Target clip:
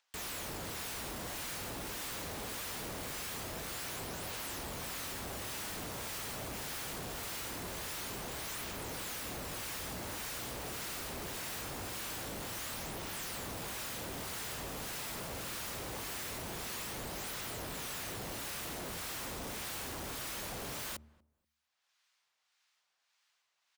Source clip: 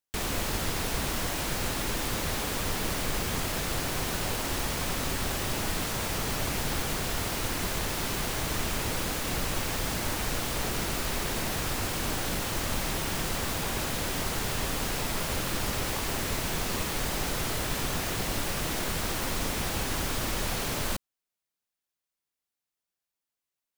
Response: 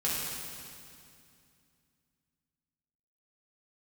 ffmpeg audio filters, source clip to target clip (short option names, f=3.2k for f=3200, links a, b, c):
-filter_complex "[0:a]highpass=48,bandreject=f=75.48:t=h:w=4,bandreject=f=150.96:t=h:w=4,bandreject=f=226.44:t=h:w=4,bandreject=f=301.92:t=h:w=4,bandreject=f=377.4:t=h:w=4,acrossover=split=320|720|6500[a][b][c][d];[a]alimiter=level_in=10dB:limit=-24dB:level=0:latency=1,volume=-10dB[e];[c]acompressor=mode=upward:threshold=-56dB:ratio=2.5[f];[d]aphaser=in_gain=1:out_gain=1:delay=1.5:decay=0.6:speed=0.23:type=triangular[g];[e][b][f][g]amix=inputs=4:normalize=0,acrossover=split=1000[h][i];[h]aeval=exprs='val(0)*(1-0.5/2+0.5/2*cos(2*PI*1.7*n/s))':c=same[j];[i]aeval=exprs='val(0)*(1-0.5/2-0.5/2*cos(2*PI*1.7*n/s))':c=same[k];[j][k]amix=inputs=2:normalize=0,asoftclip=type=tanh:threshold=-35.5dB,asplit=2[l][m];[m]adelay=239,lowpass=f=920:p=1,volume=-22.5dB,asplit=2[n][o];[o]adelay=239,lowpass=f=920:p=1,volume=0.24[p];[l][n][p]amix=inputs=3:normalize=0,volume=-2.5dB"